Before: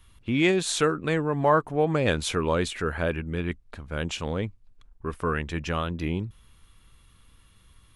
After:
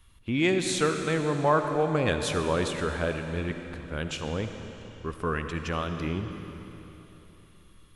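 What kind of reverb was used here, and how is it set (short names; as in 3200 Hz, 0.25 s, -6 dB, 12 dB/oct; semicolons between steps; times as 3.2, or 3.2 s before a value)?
digital reverb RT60 3.5 s, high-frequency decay 0.95×, pre-delay 30 ms, DRR 6 dB; gain -2.5 dB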